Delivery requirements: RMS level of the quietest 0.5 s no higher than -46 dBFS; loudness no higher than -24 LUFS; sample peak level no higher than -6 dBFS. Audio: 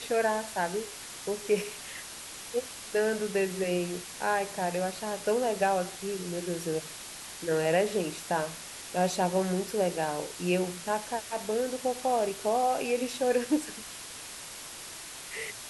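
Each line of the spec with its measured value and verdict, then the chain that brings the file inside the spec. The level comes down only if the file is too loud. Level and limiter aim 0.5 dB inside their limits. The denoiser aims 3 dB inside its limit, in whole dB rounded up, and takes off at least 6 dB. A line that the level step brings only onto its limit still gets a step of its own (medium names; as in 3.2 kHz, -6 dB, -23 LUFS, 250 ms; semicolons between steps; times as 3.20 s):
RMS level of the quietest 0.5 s -43 dBFS: fail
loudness -31.0 LUFS: pass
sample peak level -14.0 dBFS: pass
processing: noise reduction 6 dB, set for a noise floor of -43 dBFS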